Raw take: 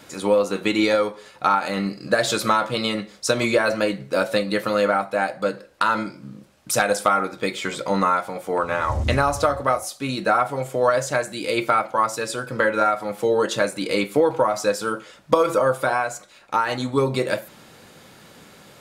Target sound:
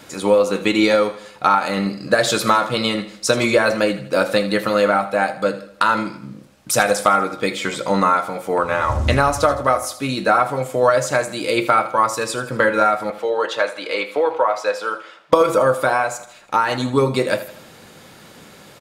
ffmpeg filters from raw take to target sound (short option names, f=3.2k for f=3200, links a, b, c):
-filter_complex "[0:a]asettb=1/sr,asplit=3[a][b][c];[a]atrim=end=13.104[d];[b]atrim=start=13.1:end=15.33,asetpts=PTS-STARTPTS,afade=t=in:d=0.004:c=qsin,afade=t=out:st=2.226:d=0.004:c=qsin,acrossover=split=430 4300:gain=0.0708 1 0.178[e][f][g];[e][f][g]amix=inputs=3:normalize=0[h];[c]atrim=start=15.326[i];[d][h]acrossfade=d=0.004:c1=hsin:c2=qsin[j];[j][i]acrossfade=d=0.004:c1=qsin:c2=hsin,aecho=1:1:80|160|240|320:0.188|0.0885|0.0416|0.0196,volume=3.5dB"